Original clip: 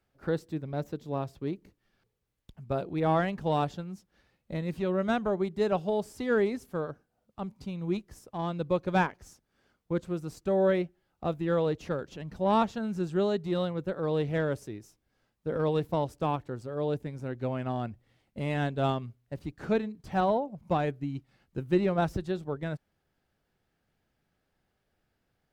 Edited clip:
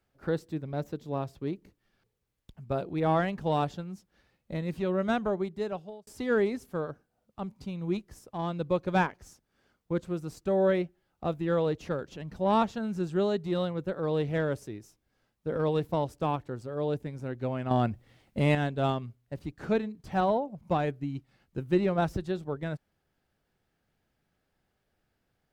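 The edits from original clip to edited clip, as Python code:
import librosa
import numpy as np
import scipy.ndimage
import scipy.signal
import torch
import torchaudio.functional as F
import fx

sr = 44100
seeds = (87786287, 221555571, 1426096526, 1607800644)

y = fx.edit(x, sr, fx.fade_out_span(start_s=5.26, length_s=0.81),
    fx.clip_gain(start_s=17.71, length_s=0.84, db=7.5), tone=tone)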